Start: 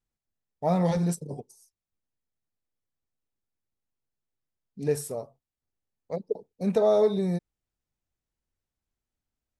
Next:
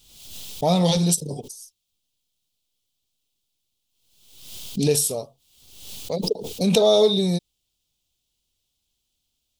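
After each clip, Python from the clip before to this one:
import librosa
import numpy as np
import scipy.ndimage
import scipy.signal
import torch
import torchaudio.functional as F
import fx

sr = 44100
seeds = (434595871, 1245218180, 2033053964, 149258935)

y = fx.high_shelf_res(x, sr, hz=2400.0, db=10.5, q=3.0)
y = fx.pre_swell(y, sr, db_per_s=59.0)
y = y * librosa.db_to_amplitude(5.0)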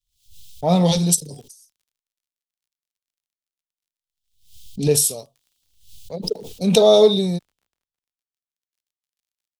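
y = fx.low_shelf(x, sr, hz=120.0, db=5.0)
y = fx.dmg_crackle(y, sr, seeds[0], per_s=42.0, level_db=-35.0)
y = fx.band_widen(y, sr, depth_pct=100)
y = y * librosa.db_to_amplitude(-4.5)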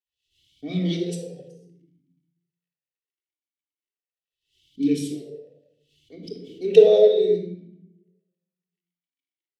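y = fx.room_shoebox(x, sr, seeds[1], volume_m3=3000.0, walls='furnished', distance_m=3.5)
y = fx.vowel_sweep(y, sr, vowels='e-i', hz=0.71)
y = y * librosa.db_to_amplitude(3.5)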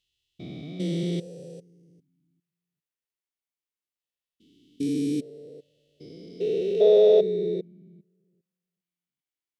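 y = fx.spec_steps(x, sr, hold_ms=400)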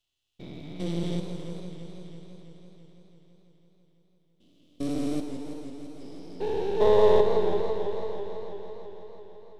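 y = np.where(x < 0.0, 10.0 ** (-12.0 / 20.0) * x, x)
y = y + 10.0 ** (-22.5 / 20.0) * np.pad(y, (int(988 * sr / 1000.0), 0))[:len(y)]
y = fx.echo_warbled(y, sr, ms=166, feedback_pct=80, rate_hz=2.8, cents=139, wet_db=-9.0)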